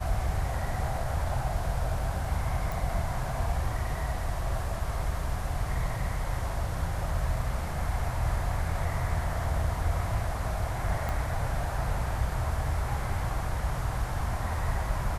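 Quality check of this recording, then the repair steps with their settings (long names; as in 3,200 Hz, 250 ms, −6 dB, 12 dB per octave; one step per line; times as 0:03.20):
0:02.72: click
0:11.09: click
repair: click removal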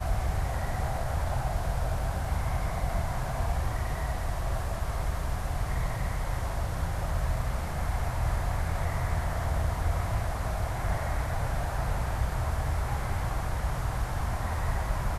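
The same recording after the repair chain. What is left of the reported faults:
none of them is left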